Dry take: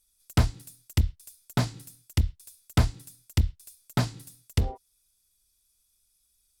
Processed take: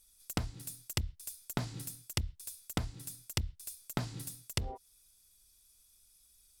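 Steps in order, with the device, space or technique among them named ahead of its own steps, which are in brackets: serial compression, peaks first (compression 5:1, threshold -31 dBFS, peak gain reduction 14.5 dB; compression 3:1, threshold -37 dBFS, peak gain reduction 8 dB); trim +5 dB

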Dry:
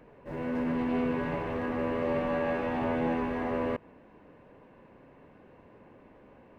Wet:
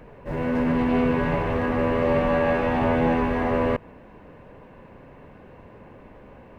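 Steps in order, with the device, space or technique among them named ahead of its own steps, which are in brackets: low shelf boost with a cut just above (bass shelf 98 Hz +8 dB; peaking EQ 300 Hz -3.5 dB 0.75 oct); trim +8.5 dB

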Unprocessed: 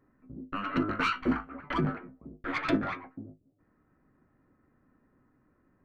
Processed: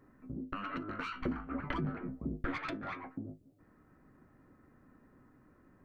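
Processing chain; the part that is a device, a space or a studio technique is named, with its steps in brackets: serial compression, leveller first (compression 2.5:1, threshold -31 dBFS, peak gain reduction 7 dB; compression 8:1, threshold -42 dBFS, peak gain reduction 14.5 dB); 1.12–2.58 s: bass shelf 330 Hz +8.5 dB; trim +5 dB

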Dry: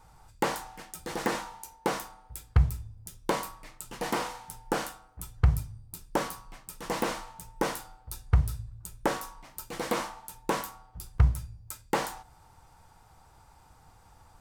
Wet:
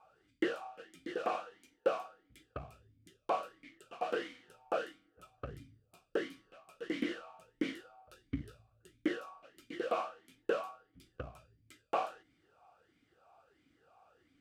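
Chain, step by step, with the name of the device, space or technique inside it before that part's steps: talk box (valve stage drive 15 dB, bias 0.5; talking filter a-i 1.5 Hz); trim +8.5 dB

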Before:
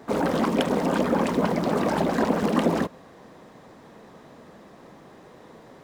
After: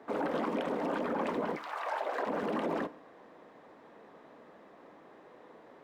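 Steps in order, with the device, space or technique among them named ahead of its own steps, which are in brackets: 1.55–2.25 s: high-pass 1.2 kHz -> 370 Hz 24 dB/octave; DJ mixer with the lows and highs turned down (three-band isolator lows -14 dB, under 250 Hz, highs -13 dB, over 3.2 kHz; peak limiter -18.5 dBFS, peak gain reduction 8 dB); FDN reverb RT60 0.63 s, low-frequency decay 0.9×, high-frequency decay 0.95×, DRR 15 dB; trim -5.5 dB

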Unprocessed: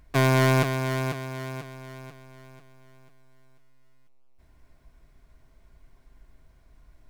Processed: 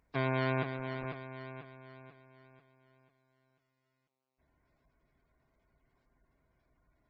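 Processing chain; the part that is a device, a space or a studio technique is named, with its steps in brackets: noise-suppressed video call (high-pass 150 Hz 6 dB/octave; spectral gate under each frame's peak -25 dB strong; trim -9 dB; Opus 16 kbps 48 kHz)

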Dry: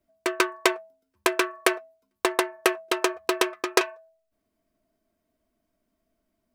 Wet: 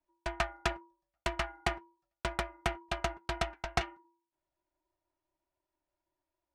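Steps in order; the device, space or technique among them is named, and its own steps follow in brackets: steep high-pass 260 Hz 48 dB/octave; distance through air 64 m; alien voice (ring modulator 310 Hz; flange 2 Hz, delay 1.3 ms, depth 1.6 ms, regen -85%); trim -2 dB

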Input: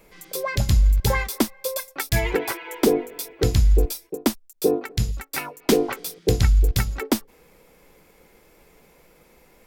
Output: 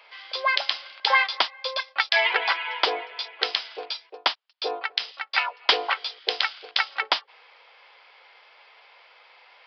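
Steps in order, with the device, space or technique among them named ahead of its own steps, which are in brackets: musical greeting card (resampled via 11.025 kHz; high-pass 760 Hz 24 dB/octave; peaking EQ 3.1 kHz +6.5 dB 0.3 oct); trim +7 dB

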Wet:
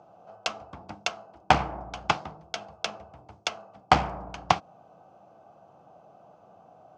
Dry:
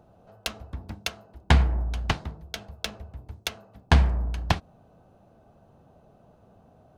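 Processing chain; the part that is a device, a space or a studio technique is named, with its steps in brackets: full-range speaker at full volume (loudspeaker Doppler distortion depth 0.72 ms; cabinet simulation 220–6800 Hz, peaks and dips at 240 Hz -9 dB, 410 Hz -6 dB, 760 Hz +6 dB, 1.2 kHz +4 dB, 1.8 kHz -7 dB, 3.9 kHz -7 dB); trim +3.5 dB

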